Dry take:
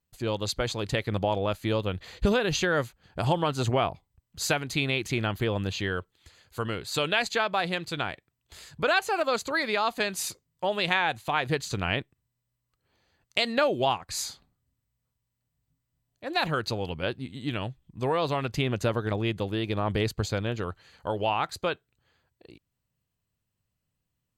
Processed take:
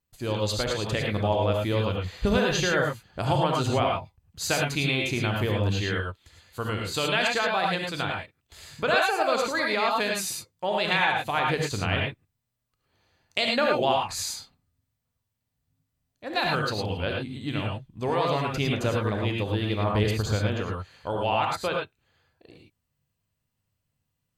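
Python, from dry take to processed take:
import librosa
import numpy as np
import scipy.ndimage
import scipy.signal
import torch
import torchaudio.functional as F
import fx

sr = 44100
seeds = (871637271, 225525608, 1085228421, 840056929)

y = fx.rev_gated(x, sr, seeds[0], gate_ms=130, shape='rising', drr_db=-0.5)
y = F.gain(torch.from_numpy(y), -1.0).numpy()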